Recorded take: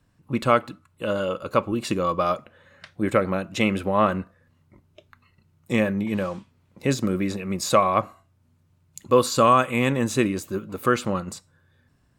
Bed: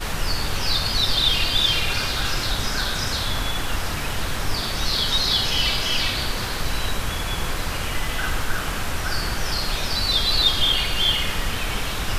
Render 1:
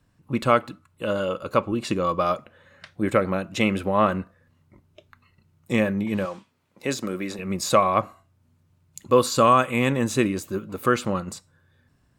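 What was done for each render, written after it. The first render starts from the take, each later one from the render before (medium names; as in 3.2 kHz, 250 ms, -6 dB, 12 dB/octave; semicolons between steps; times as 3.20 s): 1.58–2.04 s: treble shelf 12 kHz -10.5 dB; 6.25–7.39 s: high-pass 410 Hz 6 dB/octave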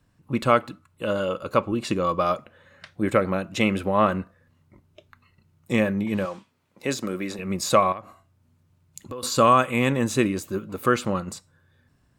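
7.92–9.23 s: compression 8:1, threshold -32 dBFS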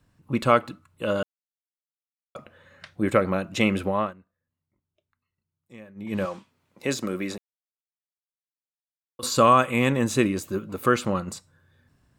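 1.23–2.35 s: mute; 3.86–6.23 s: dip -23.5 dB, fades 0.28 s; 7.38–9.19 s: mute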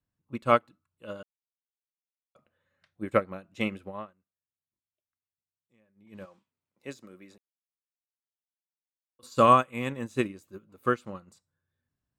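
upward expansion 2.5:1, over -29 dBFS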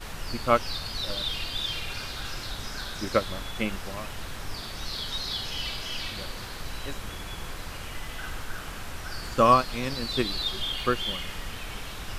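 add bed -11.5 dB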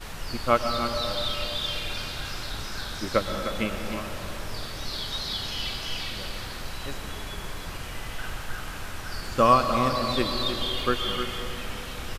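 delay 306 ms -9 dB; algorithmic reverb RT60 4 s, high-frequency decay 0.3×, pre-delay 80 ms, DRR 6.5 dB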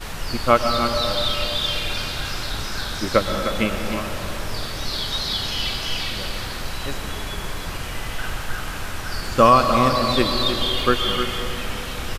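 trim +6.5 dB; peak limiter -2 dBFS, peak gain reduction 3 dB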